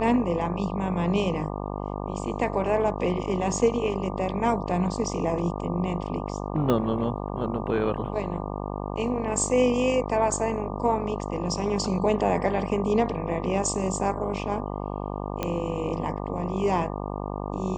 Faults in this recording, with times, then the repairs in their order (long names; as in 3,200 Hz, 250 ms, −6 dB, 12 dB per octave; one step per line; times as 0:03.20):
mains buzz 50 Hz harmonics 24 −32 dBFS
0:06.70: click −12 dBFS
0:15.43: click −13 dBFS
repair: click removal
hum removal 50 Hz, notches 24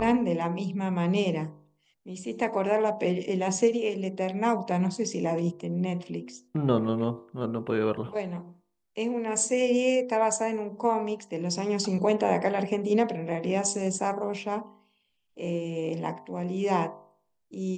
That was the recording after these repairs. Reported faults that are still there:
0:06.70: click